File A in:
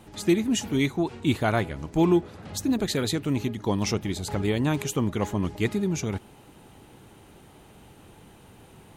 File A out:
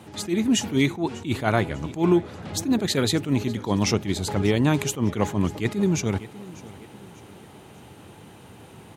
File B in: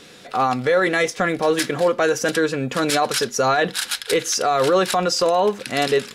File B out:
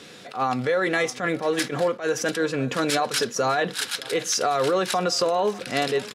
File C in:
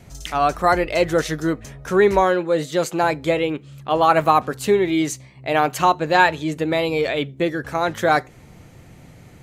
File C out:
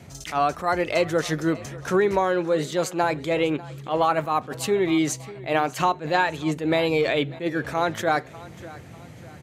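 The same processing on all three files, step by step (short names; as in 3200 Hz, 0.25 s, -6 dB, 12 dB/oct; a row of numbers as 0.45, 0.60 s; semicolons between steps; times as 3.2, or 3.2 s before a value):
HPF 74 Hz 24 dB/oct; high shelf 11000 Hz -5 dB; compressor, threshold -19 dBFS; feedback echo 0.596 s, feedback 41%, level -20 dB; attack slew limiter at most 200 dB/s; match loudness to -24 LUFS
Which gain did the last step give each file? +5.0, 0.0, +1.5 dB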